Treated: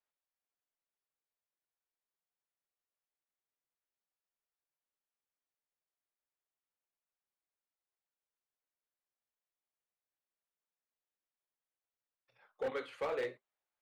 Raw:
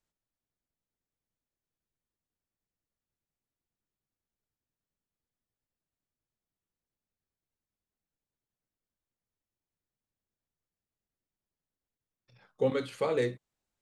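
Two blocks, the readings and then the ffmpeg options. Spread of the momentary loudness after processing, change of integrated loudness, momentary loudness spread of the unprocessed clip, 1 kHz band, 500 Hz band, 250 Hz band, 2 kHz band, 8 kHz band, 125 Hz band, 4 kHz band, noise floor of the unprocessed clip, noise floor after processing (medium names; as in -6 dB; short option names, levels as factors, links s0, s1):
4 LU, -8.0 dB, 5 LU, -4.5 dB, -8.0 dB, -15.0 dB, -3.5 dB, no reading, -21.5 dB, -7.5 dB, under -85 dBFS, under -85 dBFS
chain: -filter_complex "[0:a]flanger=delay=4.8:depth=9.3:regen=-62:speed=0.96:shape=sinusoidal,acrossover=split=440 3100:gain=0.0891 1 0.2[s0][s1][s2];[s0][s1][s2]amix=inputs=3:normalize=0,volume=47.3,asoftclip=hard,volume=0.0211,volume=1.26"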